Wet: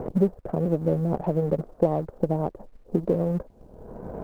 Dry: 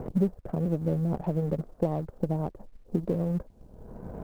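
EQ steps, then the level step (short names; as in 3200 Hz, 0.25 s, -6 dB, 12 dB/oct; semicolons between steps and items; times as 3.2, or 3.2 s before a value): bell 460 Hz +5.5 dB 1.9 oct; bell 1100 Hz +3.5 dB 2.4 oct; 0.0 dB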